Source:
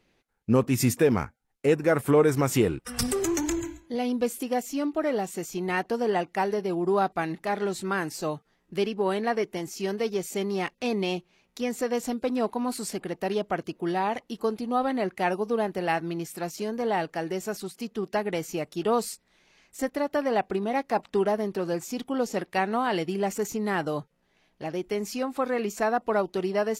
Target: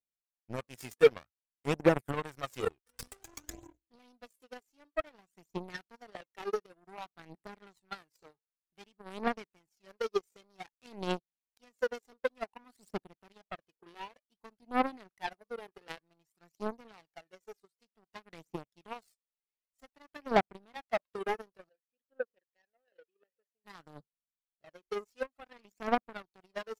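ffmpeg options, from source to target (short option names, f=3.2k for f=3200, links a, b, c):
-filter_complex "[0:a]aphaser=in_gain=1:out_gain=1:delay=2.5:decay=0.72:speed=0.54:type=triangular,asplit=3[a][b][c];[a]afade=t=out:st=21.68:d=0.02[d];[b]asplit=3[e][f][g];[e]bandpass=f=530:t=q:w=8,volume=0dB[h];[f]bandpass=f=1.84k:t=q:w=8,volume=-6dB[i];[g]bandpass=f=2.48k:t=q:w=8,volume=-9dB[j];[h][i][j]amix=inputs=3:normalize=0,afade=t=in:st=21.68:d=0.02,afade=t=out:st=23.64:d=0.02[k];[c]afade=t=in:st=23.64:d=0.02[l];[d][k][l]amix=inputs=3:normalize=0,aeval=exprs='0.75*(cos(1*acos(clip(val(0)/0.75,-1,1)))-cos(1*PI/2))+0.106*(cos(7*acos(clip(val(0)/0.75,-1,1)))-cos(7*PI/2))':c=same,volume=-8dB"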